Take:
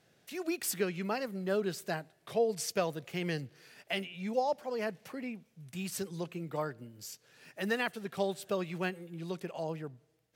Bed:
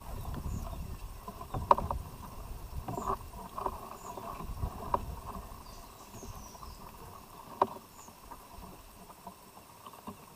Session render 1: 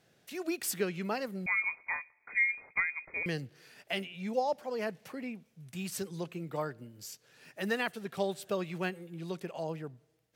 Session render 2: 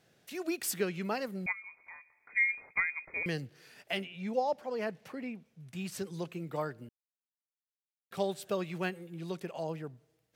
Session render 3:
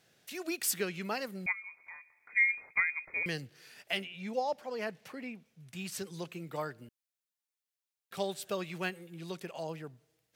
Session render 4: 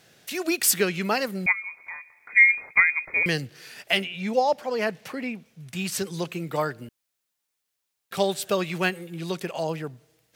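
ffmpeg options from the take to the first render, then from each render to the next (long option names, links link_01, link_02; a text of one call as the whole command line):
ffmpeg -i in.wav -filter_complex "[0:a]asettb=1/sr,asplit=3[link_01][link_02][link_03];[link_01]atrim=end=1.464[link_04];[link_02]atrim=start=1.46:end=3.26,asetpts=PTS-STARTPTS,afade=type=in:duration=0.004:curve=qsin,afade=type=out:start_time=1.796:duration=0.004:curve=qsin,lowpass=frequency=2200:width_type=q:width=0.5098,lowpass=frequency=2200:width_type=q:width=0.6013,lowpass=frequency=2200:width_type=q:width=0.9,lowpass=frequency=2200:width_type=q:width=2.563,afreqshift=-2600[link_05];[link_03]atrim=start=3.256[link_06];[link_04][link_05]acrossfade=duration=0.004:curve1=hsin:curve2=qsin[link_07];[link_07][link_06]acrossfade=duration=0.004:curve1=qsin:curve2=hsin" out.wav
ffmpeg -i in.wav -filter_complex "[0:a]asplit=3[link_01][link_02][link_03];[link_01]afade=type=out:start_time=1.51:duration=0.02[link_04];[link_02]acompressor=threshold=-58dB:ratio=2:attack=3.2:release=140:knee=1:detection=peak,afade=type=in:start_time=1.51:duration=0.02,afade=type=out:start_time=2.35:duration=0.02[link_05];[link_03]afade=type=in:start_time=2.35:duration=0.02[link_06];[link_04][link_05][link_06]amix=inputs=3:normalize=0,asettb=1/sr,asplit=3[link_07][link_08][link_09];[link_07]atrim=end=3.974[link_10];[link_08]atrim=start=3.97:end=6.07,asetpts=PTS-STARTPTS,afade=type=in:duration=0.004:curve=qsin,afade=type=out:start_time=2.096:duration=0.004:curve=qsin,highshelf=frequency=5800:gain=-7.5[link_11];[link_09]atrim=start=6.066[link_12];[link_10][link_11]acrossfade=duration=0.004:curve1=hsin:curve2=qsin[link_13];[link_13][link_12]acrossfade=duration=0.004:curve1=qsin:curve2=hsin,asplit=3[link_14][link_15][link_16];[link_14]atrim=end=6.89,asetpts=PTS-STARTPTS,afade=type=out:start_time=6.886:duration=0.004:curve=hsin[link_17];[link_15]atrim=start=6.89:end=8.11,asetpts=PTS-STARTPTS,volume=0[link_18];[link_16]atrim=start=8.11,asetpts=PTS-STARTPTS,afade=type=in:duration=0.004:curve=hsin[link_19];[link_17][link_18][link_19]concat=n=3:v=0:a=1" out.wav
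ffmpeg -i in.wav -af "tiltshelf=frequency=1300:gain=-3.5" out.wav
ffmpeg -i in.wav -af "volume=11dB" out.wav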